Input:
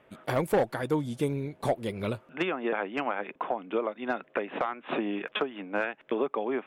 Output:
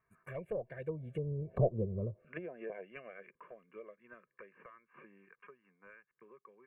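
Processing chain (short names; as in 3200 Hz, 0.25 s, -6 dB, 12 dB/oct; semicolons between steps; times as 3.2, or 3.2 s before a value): Doppler pass-by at 1.67, 13 m/s, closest 1.9 m; treble ducked by the level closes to 350 Hz, closed at -36.5 dBFS; band shelf 4300 Hz -14.5 dB 1 oct; comb 1.8 ms, depth 78%; envelope phaser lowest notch 560 Hz, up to 1900 Hz, full sweep at -36.5 dBFS; gain +4 dB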